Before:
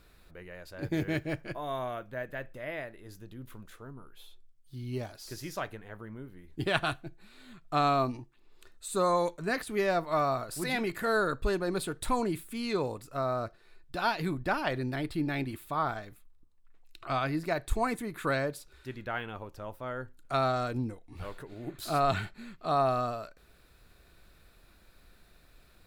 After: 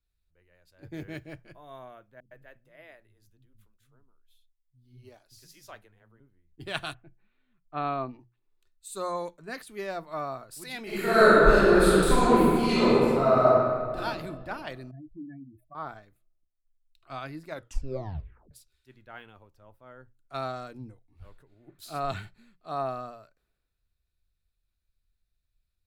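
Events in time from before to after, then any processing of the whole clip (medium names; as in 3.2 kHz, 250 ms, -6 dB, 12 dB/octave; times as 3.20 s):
2.20–6.20 s: bands offset in time lows, highs 110 ms, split 240 Hz
6.93–8.19 s: low-pass 2.2 kHz -> 3.9 kHz 24 dB/octave
10.83–13.96 s: reverb throw, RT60 2.9 s, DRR -11.5 dB
14.91–15.75 s: spectral contrast enhancement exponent 3.9
17.46 s: tape stop 1.05 s
whole clip: hum notches 60/120/180 Hz; three bands expanded up and down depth 70%; trim -6 dB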